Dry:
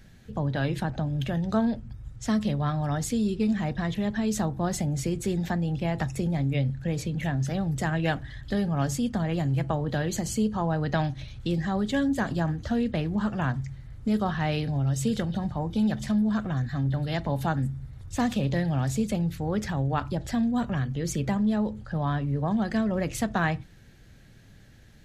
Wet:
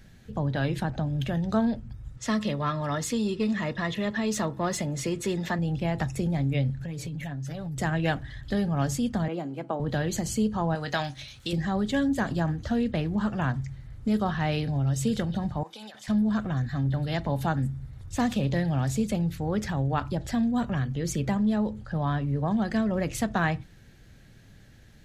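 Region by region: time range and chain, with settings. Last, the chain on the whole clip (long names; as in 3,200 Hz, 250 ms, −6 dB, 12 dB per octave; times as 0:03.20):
0:02.17–0:05.59: notch comb filter 770 Hz + mid-hump overdrive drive 12 dB, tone 4,700 Hz, clips at −15.5 dBFS
0:06.80–0:07.78: high-shelf EQ 10,000 Hz +5 dB + comb filter 7.1 ms + downward compressor 12 to 1, threshold −31 dBFS
0:09.28–0:09.80: high-pass filter 220 Hz 24 dB per octave + high-shelf EQ 2,400 Hz −11 dB + notch filter 1,800 Hz, Q 6.7
0:10.75–0:11.53: spectral tilt +3 dB per octave + double-tracking delay 21 ms −11 dB
0:15.63–0:16.08: high-pass filter 850 Hz + compressor whose output falls as the input rises −44 dBFS
whole clip: no processing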